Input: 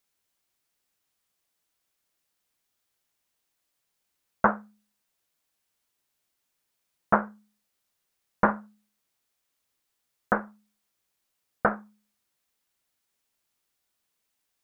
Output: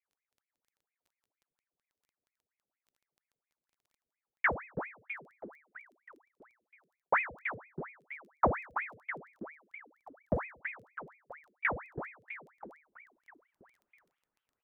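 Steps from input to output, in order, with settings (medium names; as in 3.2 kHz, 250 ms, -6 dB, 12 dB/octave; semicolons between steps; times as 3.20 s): low-pass sweep 180 Hz -> 890 Hz, 12.04–13.64 s; frequency-shifting echo 326 ms, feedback 60%, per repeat -45 Hz, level -9 dB; crackle 11 per s -53 dBFS; ring modulator with a swept carrier 1.3 kHz, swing 80%, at 4.3 Hz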